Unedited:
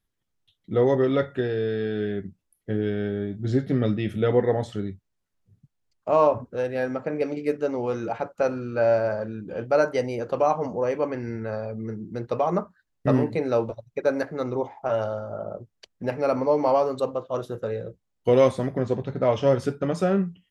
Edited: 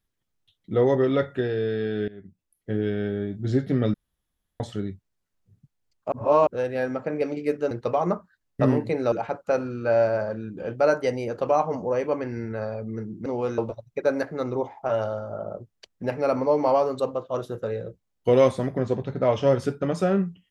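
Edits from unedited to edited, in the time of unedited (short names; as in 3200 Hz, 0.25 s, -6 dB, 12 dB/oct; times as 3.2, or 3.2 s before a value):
2.08–2.77 fade in, from -19.5 dB
3.94–4.6 room tone
6.12–6.47 reverse
7.71–8.03 swap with 12.17–13.58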